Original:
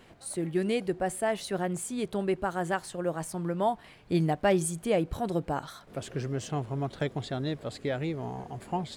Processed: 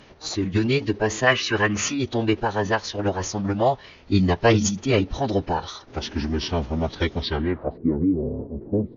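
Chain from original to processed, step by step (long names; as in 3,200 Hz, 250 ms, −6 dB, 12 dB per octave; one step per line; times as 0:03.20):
low-pass filter sweep 7,400 Hz → 380 Hz, 0:07.18–0:07.86
dynamic equaliser 3,600 Hz, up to +4 dB, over −48 dBFS, Q 0.78
downsampling to 22,050 Hz
phase-vocoder pitch shift with formants kept −9.5 semitones
gain on a spectral selection 0:01.27–0:01.98, 1,000–3,100 Hz +9 dB
level +7.5 dB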